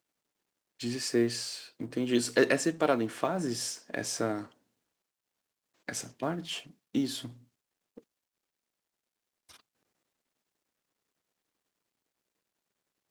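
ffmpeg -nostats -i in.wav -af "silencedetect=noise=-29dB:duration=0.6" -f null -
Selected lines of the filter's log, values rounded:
silence_start: 0.00
silence_end: 0.84 | silence_duration: 0.84
silence_start: 4.39
silence_end: 5.89 | silence_duration: 1.50
silence_start: 7.25
silence_end: 13.11 | silence_duration: 5.86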